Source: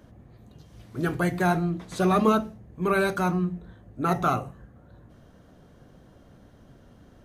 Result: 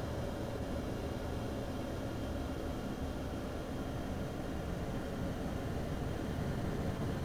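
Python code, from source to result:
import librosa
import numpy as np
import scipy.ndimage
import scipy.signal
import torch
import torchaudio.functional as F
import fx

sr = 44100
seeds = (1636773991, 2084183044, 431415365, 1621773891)

y = fx.leveller(x, sr, passes=2)
y = fx.paulstretch(y, sr, seeds[0], factor=48.0, window_s=0.25, from_s=6.16)
y = fx.attack_slew(y, sr, db_per_s=120.0)
y = F.gain(torch.from_numpy(y), 15.0).numpy()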